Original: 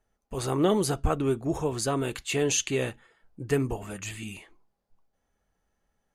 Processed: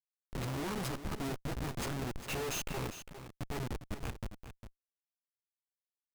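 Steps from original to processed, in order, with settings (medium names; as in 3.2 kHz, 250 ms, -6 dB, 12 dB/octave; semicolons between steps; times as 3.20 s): comb filter that takes the minimum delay 0.77 ms; chorus voices 4, 0.39 Hz, delay 14 ms, depth 2.7 ms; Schmitt trigger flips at -34.5 dBFS; on a send: delay 404 ms -11 dB; on the sum: trim -1.5 dB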